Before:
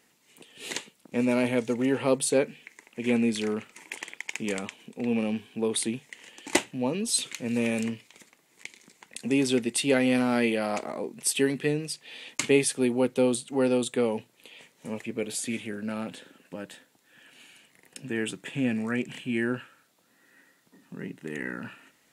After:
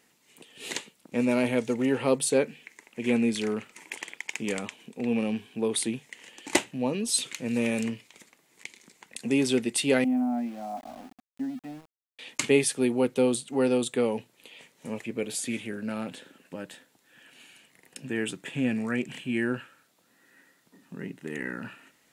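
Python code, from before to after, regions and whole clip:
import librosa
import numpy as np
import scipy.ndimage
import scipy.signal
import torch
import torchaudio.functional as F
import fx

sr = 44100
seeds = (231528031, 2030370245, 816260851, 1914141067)

y = fx.chain(x, sr, fx.double_bandpass(hz=430.0, octaves=1.5),
    fx.sample_gate(floor_db=-46.5), at=(10.04, 12.19))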